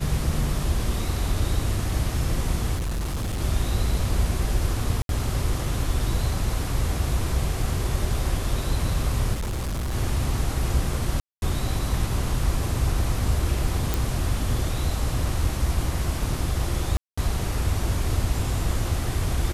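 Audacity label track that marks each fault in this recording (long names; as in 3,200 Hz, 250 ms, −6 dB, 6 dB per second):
2.750000	3.410000	clipping −24 dBFS
5.020000	5.090000	drop-out 72 ms
9.330000	9.940000	clipping −24.5 dBFS
11.200000	11.420000	drop-out 221 ms
13.940000	13.940000	click
16.970000	17.180000	drop-out 205 ms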